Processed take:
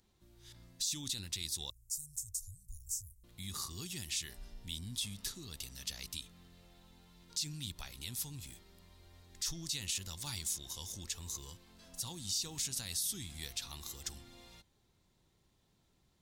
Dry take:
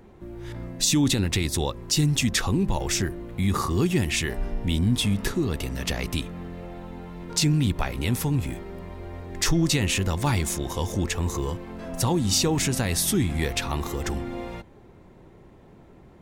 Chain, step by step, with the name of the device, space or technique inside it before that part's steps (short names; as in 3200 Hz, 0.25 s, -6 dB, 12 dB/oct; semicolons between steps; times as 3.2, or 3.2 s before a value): 1.7–3.24 inverse Chebyshev band-stop 250–3300 Hz, stop band 50 dB; passive tone stack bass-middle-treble 5-5-5; over-bright horn tweeter (resonant high shelf 3000 Hz +8.5 dB, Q 1.5; limiter -18 dBFS, peak gain reduction 10.5 dB); gain -7.5 dB